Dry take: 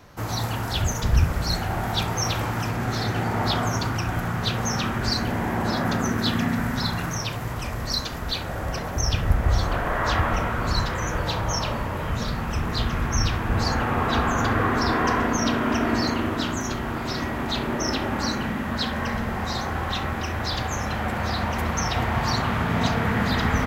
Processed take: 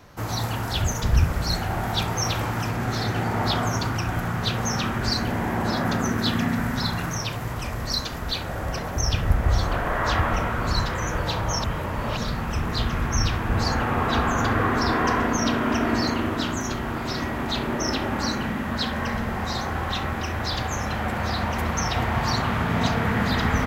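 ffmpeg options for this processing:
-filter_complex "[0:a]asplit=3[a][b][c];[a]atrim=end=11.642[d];[b]atrim=start=11.638:end=12.172,asetpts=PTS-STARTPTS,areverse[e];[c]atrim=start=12.168[f];[d][e]acrossfade=d=0.004:c1=hsin:c2=hsin[g];[g][f]acrossfade=d=0.004:c1=hsin:c2=hsin"

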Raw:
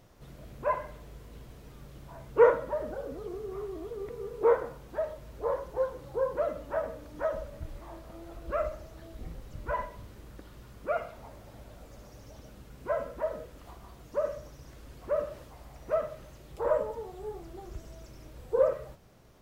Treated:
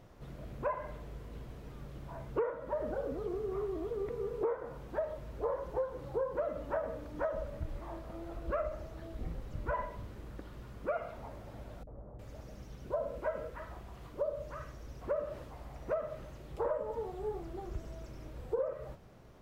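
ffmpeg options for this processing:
-filter_complex "[0:a]asettb=1/sr,asplit=3[a][b][c];[a]atrim=end=11.834[d];[b]atrim=start=11.83:end=15.01,asetpts=PTS-STARTPTS,afade=t=in:d=0.004:c=qsin,afade=t=out:st=3.176:d=0.004:c=qsin,acrossover=split=260|1100[e][f][g];[f]adelay=40[h];[g]adelay=360[i];[e][h][i]amix=inputs=3:normalize=0,atrim=end_sample=140238[j];[c]atrim=start=15.006[k];[d][j]acrossfade=d=0.004:c1=hsin:c2=qsin[l];[l][k]acrossfade=d=0.004:c1=qsin:c2=hsin,highshelf=f=3.6k:g=-9.5,acompressor=threshold=-32dB:ratio=20,volume=2dB"

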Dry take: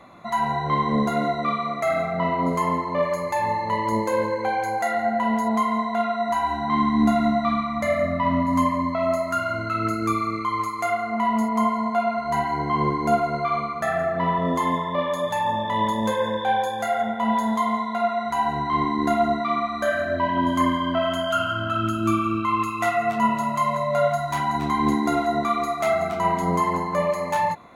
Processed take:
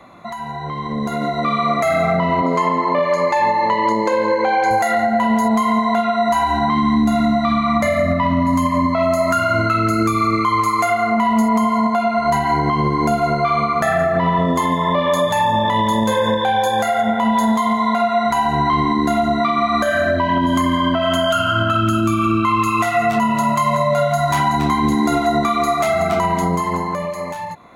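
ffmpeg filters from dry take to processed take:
-filter_complex "[0:a]asettb=1/sr,asplit=3[a][b][c];[a]atrim=end=2.414[d];[b]atrim=start=2.41:end=4.71,asetpts=PTS-STARTPTS,afade=t=in:d=0.004:c=qsin,afade=t=out:st=2.296:d=0.004:c=qsin,highpass=240,lowpass=4.9k[e];[c]atrim=start=4.706[f];[d][e]acrossfade=d=0.004:c1=hsin:c2=qsin[g];[g][f]acrossfade=d=0.004:c1=qsin:c2=hsin,acrossover=split=200|3000[h][i][j];[i]acompressor=threshold=-24dB:ratio=6[k];[h][k][j]amix=inputs=3:normalize=0,alimiter=limit=-24dB:level=0:latency=1:release=289,dynaudnorm=f=140:g=17:m=12dB,volume=4dB"

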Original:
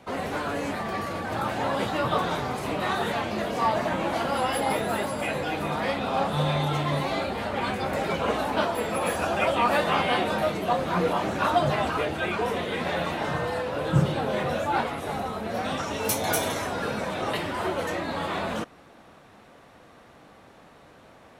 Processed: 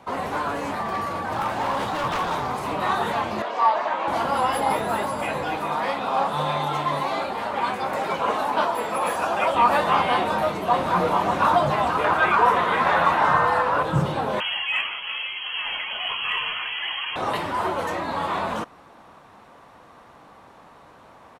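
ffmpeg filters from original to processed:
-filter_complex "[0:a]asettb=1/sr,asplit=3[a][b][c];[a]atrim=end=0.564[d];[b]atrim=start=0.56:end=2.73,asetpts=PTS-STARTPTS,afade=t=in:d=0.004:c=qsin,afade=t=out:st=2.166:d=0.004:c=qsin,aeval=exprs='0.0708*(abs(mod(val(0)/0.0708+3,4)-2)-1)':c=same[e];[c]atrim=start=2.726[f];[d][e]acrossfade=d=0.004:c1=hsin:c2=qsin[g];[g][f]acrossfade=d=0.004:c1=qsin:c2=hsin,asettb=1/sr,asplit=3[h][i][j];[h]atrim=end=3.424[k];[i]atrim=start=3.42:end=4.08,asetpts=PTS-STARTPTS,afade=t=in:d=0.004:c=qsin,afade=t=out:st=0.656:d=0.004:c=qsin,highpass=490,lowpass=4.7k[l];[j]atrim=start=4.076[m];[k][l]acrossfade=d=0.004:c1=hsin:c2=qsin[n];[n][m]acrossfade=d=0.004:c1=qsin:c2=hsin,asettb=1/sr,asplit=3[o][p][q];[o]atrim=end=5.574[r];[p]atrim=start=5.57:end=9.55,asetpts=PTS-STARTPTS,afade=t=in:d=0.004:c=qsin,afade=t=out:st=3.976:d=0.004:c=qsin,highpass=f=250:p=1[s];[q]atrim=start=9.546[t];[r][s]acrossfade=d=0.004:c1=hsin:c2=qsin[u];[u][t]acrossfade=d=0.004:c1=qsin:c2=hsin,asplit=2[v][w];[w]afade=t=in:st=10.15:d=0.01,afade=t=out:st=10.98:d=0.01,aecho=0:1:580|1160|1740|2320|2900|3480|4060|4640:0.530884|0.318531|0.191118|0.114671|0.0688026|0.0412816|0.0247689|0.0148614[x];[v][x]amix=inputs=2:normalize=0,asettb=1/sr,asplit=3[y][z][aa];[y]atrim=end=12.044[ab];[z]atrim=start=12.04:end=13.83,asetpts=PTS-STARTPTS,afade=t=in:d=0.004:c=qsin,afade=t=out:st=1.786:d=0.004:c=qsin,equalizer=f=1.3k:t=o:w=1.5:g=10.5[ac];[aa]atrim=start=13.826[ad];[ab][ac]acrossfade=d=0.004:c1=hsin:c2=qsin[ae];[ae][ad]acrossfade=d=0.004:c1=qsin:c2=hsin,asettb=1/sr,asplit=3[af][ag][ah];[af]atrim=end=14.404[ai];[ag]atrim=start=14.4:end=17.16,asetpts=PTS-STARTPTS,afade=t=in:d=0.004:c=qsin,afade=t=out:st=2.756:d=0.004:c=qsin,lowpass=f=2.9k:t=q:w=0.5098,lowpass=f=2.9k:t=q:w=0.6013,lowpass=f=2.9k:t=q:w=0.9,lowpass=f=2.9k:t=q:w=2.563,afreqshift=-3400[aj];[ah]atrim=start=17.156[ak];[ai][aj]acrossfade=d=0.004:c1=hsin:c2=qsin[al];[al][ak]acrossfade=d=0.004:c1=qsin:c2=hsin,acontrast=65,equalizer=f=1k:t=o:w=0.77:g=9,volume=-7dB"

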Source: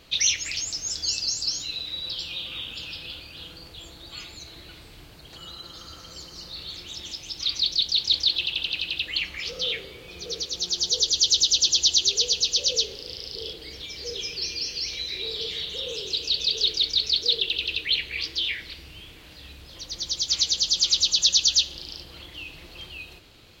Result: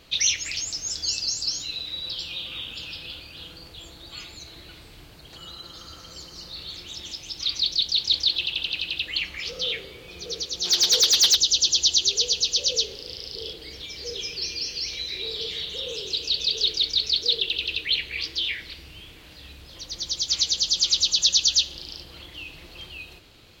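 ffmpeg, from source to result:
-filter_complex "[0:a]asplit=3[a][b][c];[a]afade=t=out:st=10.64:d=0.02[d];[b]asplit=2[e][f];[f]highpass=f=720:p=1,volume=18dB,asoftclip=type=tanh:threshold=-7.5dB[g];[e][g]amix=inputs=2:normalize=0,lowpass=f=4.9k:p=1,volume=-6dB,afade=t=in:st=10.64:d=0.02,afade=t=out:st=11.34:d=0.02[h];[c]afade=t=in:st=11.34:d=0.02[i];[d][h][i]amix=inputs=3:normalize=0"

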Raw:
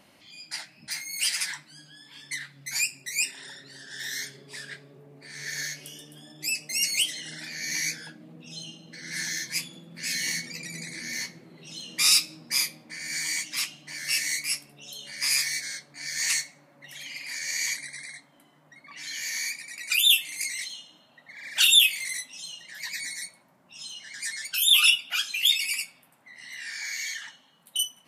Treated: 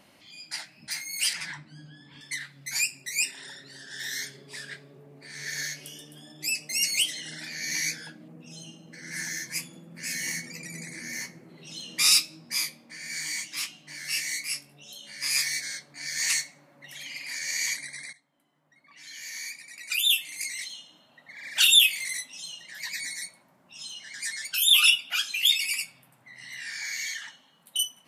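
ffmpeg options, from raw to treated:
-filter_complex "[0:a]asettb=1/sr,asplit=3[a][b][c];[a]atrim=end=1.334[d];[b]atrim=start=1.33:end=2.21,asetpts=PTS-STARTPTS,afade=t=in:d=0.004:c=qsin,afade=t=out:st=0.876:d=0.004:c=qsin,aemphasis=mode=reproduction:type=riaa[e];[c]atrim=start=2.206[f];[d][e]acrossfade=d=0.004:c1=hsin:c2=qsin[g];[g][f]acrossfade=d=0.004:c1=qsin:c2=hsin,asettb=1/sr,asplit=3[h][i][j];[h]atrim=end=8.284[k];[i]atrim=start=8.28:end=11.49,asetpts=PTS-STARTPTS,afade=t=in:d=0.004:c=qsin,afade=t=out:st=3.206:d=0.004:c=qsin,equalizer=f=3.7k:t=o:w=0.7:g=-11[l];[j]atrim=start=11.486[m];[k][l]acrossfade=d=0.004:c1=hsin:c2=qsin[n];[n][m]acrossfade=d=0.004:c1=qsin:c2=hsin,asplit=3[o][p][q];[o]afade=t=out:st=12.21:d=0.02[r];[p]flanger=delay=17.5:depth=4.2:speed=1.6,afade=t=in:st=12.21:d=0.02,afade=t=out:st=15.34:d=0.02[s];[q]afade=t=in:st=15.34:d=0.02[t];[r][s][t]amix=inputs=3:normalize=0,asettb=1/sr,asplit=3[u][v][w];[u]atrim=end=25.804[x];[v]atrim=start=25.8:end=27.07,asetpts=PTS-STARTPTS,afade=t=in:d=0.004:c=qsin,afade=t=out:st=1.266:d=0.004:c=qsin,equalizer=f=120:w=2:g=12[y];[w]atrim=start=27.066[z];[x][y]acrossfade=d=0.004:c1=hsin:c2=qsin[aa];[aa][z]acrossfade=d=0.004:c1=qsin:c2=hsin,asplit=2[ab][ac];[ab]atrim=end=18.13,asetpts=PTS-STARTPTS,afade=t=out:st=18.126:d=0.004:c=hsin:silence=0.141254[ad];[ac]atrim=start=18.13,asetpts=PTS-STARTPTS,afade=t=in:d=3.19:silence=0.141254[ae];[ad][ae]concat=n=2:v=0:a=1"

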